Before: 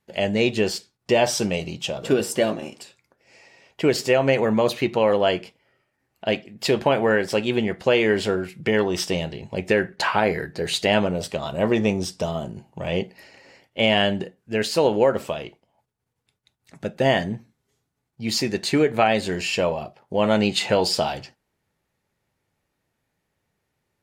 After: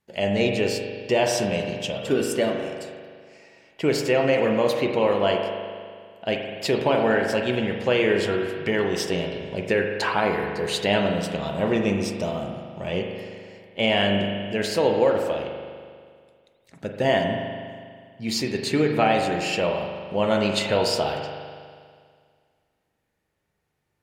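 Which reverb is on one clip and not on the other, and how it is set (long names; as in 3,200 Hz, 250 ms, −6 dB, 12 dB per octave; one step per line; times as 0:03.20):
spring reverb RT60 2 s, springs 40 ms, chirp 80 ms, DRR 2.5 dB
level −3 dB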